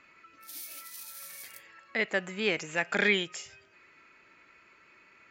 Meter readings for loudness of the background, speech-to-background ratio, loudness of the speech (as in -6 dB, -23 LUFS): -43.0 LUFS, 13.5 dB, -29.5 LUFS